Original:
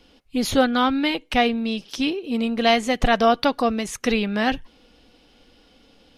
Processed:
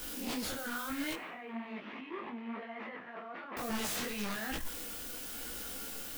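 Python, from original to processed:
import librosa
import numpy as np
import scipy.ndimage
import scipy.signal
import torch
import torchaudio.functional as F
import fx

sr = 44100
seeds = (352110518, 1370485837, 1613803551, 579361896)

y = fx.spec_swells(x, sr, rise_s=0.42)
y = fx.peak_eq(y, sr, hz=1500.0, db=9.5, octaves=0.74)
y = fx.over_compress(y, sr, threshold_db=-28.0, ratio=-1.0)
y = (np.mod(10.0 ** (19.0 / 20.0) * y + 1.0, 2.0) - 1.0) / 10.0 ** (19.0 / 20.0)
y = fx.dmg_noise_colour(y, sr, seeds[0], colour='blue', level_db=-39.0)
y = 10.0 ** (-32.5 / 20.0) * np.tanh(y / 10.0 ** (-32.5 / 20.0))
y = fx.cabinet(y, sr, low_hz=230.0, low_slope=24, high_hz=2100.0, hz=(290.0, 520.0, 780.0, 1500.0), db=(-9, -7, -5, -8), at=(1.13, 3.57))
y = fx.rev_double_slope(y, sr, seeds[1], early_s=0.62, late_s=2.2, knee_db=-21, drr_db=13.0)
y = fx.detune_double(y, sr, cents=37)
y = y * librosa.db_to_amplitude(1.0)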